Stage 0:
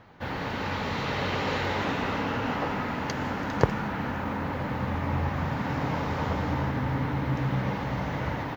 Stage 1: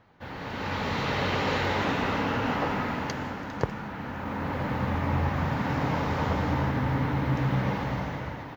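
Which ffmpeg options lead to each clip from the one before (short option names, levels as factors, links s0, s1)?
-af "dynaudnorm=f=110:g=11:m=2.66,volume=0.447"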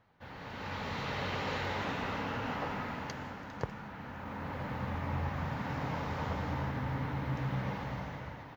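-af "equalizer=f=320:w=1.5:g=-3.5,volume=0.398"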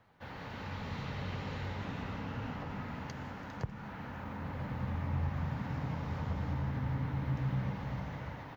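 -filter_complex "[0:a]acrossover=split=220[s0][s1];[s1]acompressor=threshold=0.00501:ratio=5[s2];[s0][s2]amix=inputs=2:normalize=0,volume=1.33"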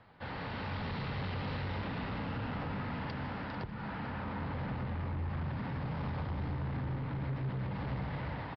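-af "alimiter=level_in=2:limit=0.0631:level=0:latency=1:release=186,volume=0.501,aresample=11025,asoftclip=type=tanh:threshold=0.0119,aresample=44100,aecho=1:1:444:0.224,volume=2"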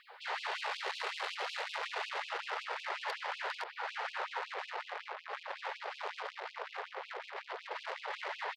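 -af "asoftclip=type=tanh:threshold=0.0112,afftfilt=real='re*gte(b*sr/1024,370*pow(2500/370,0.5+0.5*sin(2*PI*5.4*pts/sr)))':imag='im*gte(b*sr/1024,370*pow(2500/370,0.5+0.5*sin(2*PI*5.4*pts/sr)))':win_size=1024:overlap=0.75,volume=3.16"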